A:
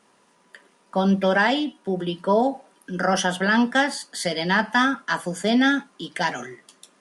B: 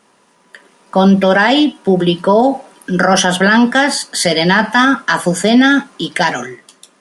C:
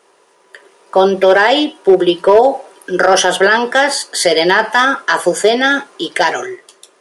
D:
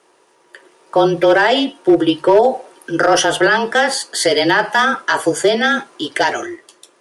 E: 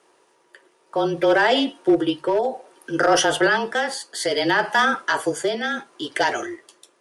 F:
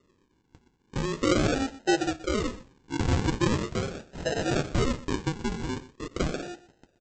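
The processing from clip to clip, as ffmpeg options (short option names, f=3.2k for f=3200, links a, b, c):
-af "dynaudnorm=f=150:g=11:m=11.5dB,alimiter=level_in=7.5dB:limit=-1dB:release=50:level=0:latency=1,volume=-1dB"
-af "lowshelf=f=300:t=q:w=3:g=-8.5,volume=1.5dB,asoftclip=hard,volume=-1.5dB"
-af "afreqshift=-28,volume=-2.5dB"
-af "tremolo=f=0.62:d=0.51,volume=-4dB"
-af "aresample=16000,acrusher=samples=20:mix=1:aa=0.000001:lfo=1:lforange=12:lforate=0.41,aresample=44100,aecho=1:1:123:0.133,volume=-7dB"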